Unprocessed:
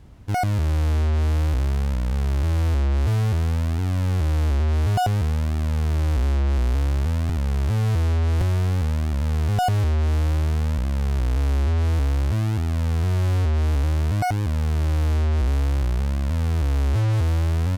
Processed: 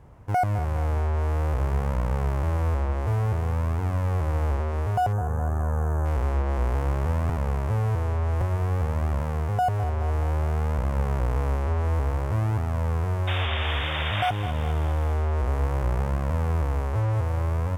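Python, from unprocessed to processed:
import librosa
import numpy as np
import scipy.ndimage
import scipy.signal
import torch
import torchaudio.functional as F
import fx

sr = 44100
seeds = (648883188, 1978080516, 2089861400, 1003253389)

y = fx.graphic_eq(x, sr, hz=(125, 250, 500, 1000, 2000, 4000), db=(5, -3, 8, 9, 3, -8))
y = fx.spec_paint(y, sr, seeds[0], shape='noise', start_s=13.27, length_s=1.03, low_hz=510.0, high_hz=3700.0, level_db=-21.0)
y = fx.echo_feedback(y, sr, ms=209, feedback_pct=55, wet_db=-13.5)
y = fx.rider(y, sr, range_db=10, speed_s=0.5)
y = fx.spec_box(y, sr, start_s=5.13, length_s=0.92, low_hz=1800.0, high_hz=5900.0, gain_db=-15)
y = F.gain(torch.from_numpy(y), -7.0).numpy()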